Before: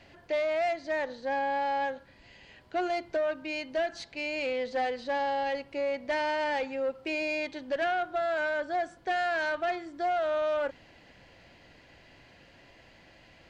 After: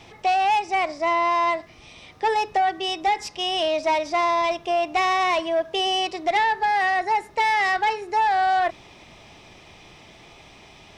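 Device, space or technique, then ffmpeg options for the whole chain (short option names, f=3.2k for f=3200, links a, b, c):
nightcore: -af "asetrate=54243,aresample=44100,volume=8.5dB"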